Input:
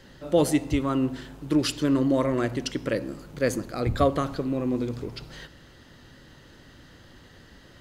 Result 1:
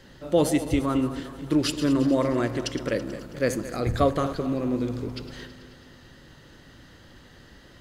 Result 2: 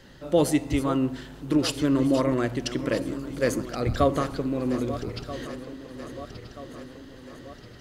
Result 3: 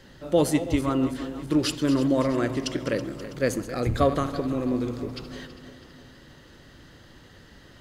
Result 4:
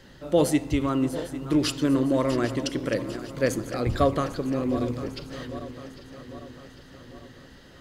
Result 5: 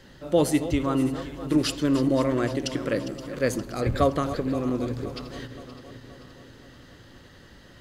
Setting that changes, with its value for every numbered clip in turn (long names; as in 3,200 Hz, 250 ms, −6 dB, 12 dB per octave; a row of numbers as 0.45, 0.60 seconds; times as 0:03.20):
feedback delay that plays each chunk backwards, delay time: 109, 641, 163, 400, 261 milliseconds